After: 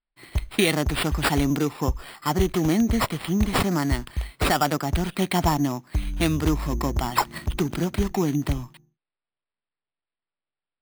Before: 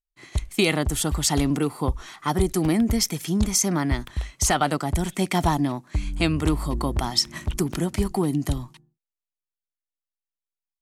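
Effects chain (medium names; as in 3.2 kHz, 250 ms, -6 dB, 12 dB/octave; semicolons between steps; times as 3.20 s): sample-and-hold 7×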